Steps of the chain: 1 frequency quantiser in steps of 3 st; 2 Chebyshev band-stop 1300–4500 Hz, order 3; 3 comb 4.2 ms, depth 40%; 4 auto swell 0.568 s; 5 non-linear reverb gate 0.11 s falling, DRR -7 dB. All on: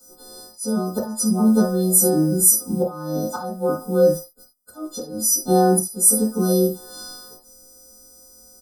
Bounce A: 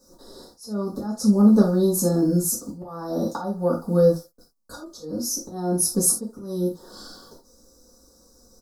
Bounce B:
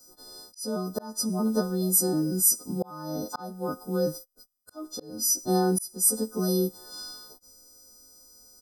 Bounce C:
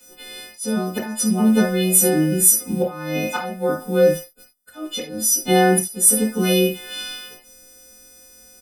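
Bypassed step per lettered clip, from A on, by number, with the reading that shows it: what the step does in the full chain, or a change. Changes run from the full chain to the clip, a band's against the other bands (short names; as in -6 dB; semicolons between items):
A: 1, 1 kHz band -5.5 dB; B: 5, loudness change -8.0 LU; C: 2, 2 kHz band +12.0 dB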